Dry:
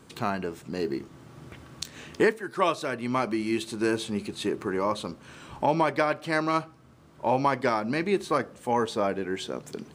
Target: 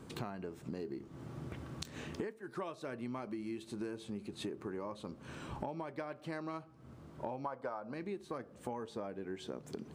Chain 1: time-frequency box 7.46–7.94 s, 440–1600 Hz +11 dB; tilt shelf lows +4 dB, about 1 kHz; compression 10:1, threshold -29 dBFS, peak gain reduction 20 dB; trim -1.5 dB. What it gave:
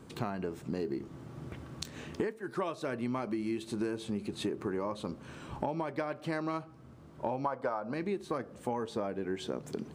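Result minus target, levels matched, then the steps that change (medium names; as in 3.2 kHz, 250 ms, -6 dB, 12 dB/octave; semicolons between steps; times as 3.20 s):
compression: peak gain reduction -7 dB
change: compression 10:1, threshold -37 dBFS, peak gain reduction 27.5 dB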